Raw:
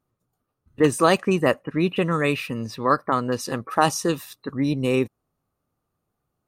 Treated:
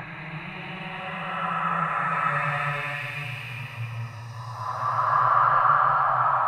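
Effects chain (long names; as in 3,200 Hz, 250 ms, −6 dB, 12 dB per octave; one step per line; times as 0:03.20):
soft clipping −11 dBFS, distortion −16 dB
extreme stretch with random phases 4.6×, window 0.50 s, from 0:01.71
drawn EQ curve 130 Hz 0 dB, 250 Hz −29 dB, 470 Hz −22 dB, 710 Hz +6 dB, 1,700 Hz +4 dB, 3,700 Hz −11 dB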